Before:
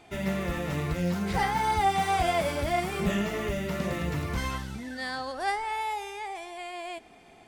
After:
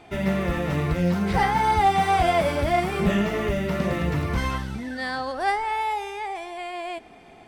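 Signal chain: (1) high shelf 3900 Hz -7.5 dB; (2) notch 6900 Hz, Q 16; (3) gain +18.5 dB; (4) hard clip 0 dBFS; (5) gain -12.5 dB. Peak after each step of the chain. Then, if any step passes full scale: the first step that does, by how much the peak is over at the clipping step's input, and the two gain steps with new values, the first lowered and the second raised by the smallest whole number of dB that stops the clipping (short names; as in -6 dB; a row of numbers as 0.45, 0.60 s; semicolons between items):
-14.5, -14.5, +4.0, 0.0, -12.5 dBFS; step 3, 4.0 dB; step 3 +14.5 dB, step 5 -8.5 dB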